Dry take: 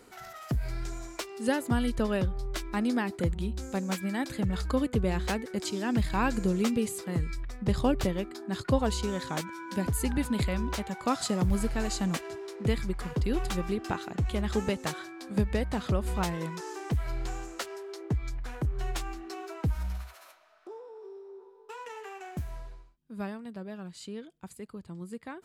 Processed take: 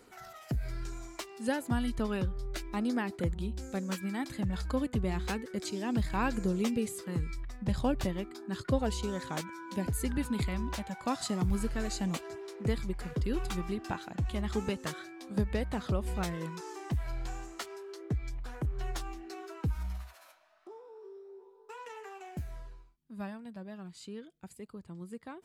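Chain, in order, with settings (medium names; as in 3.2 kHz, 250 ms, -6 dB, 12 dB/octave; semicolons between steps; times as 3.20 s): flange 0.32 Hz, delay 0 ms, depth 1.3 ms, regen -62%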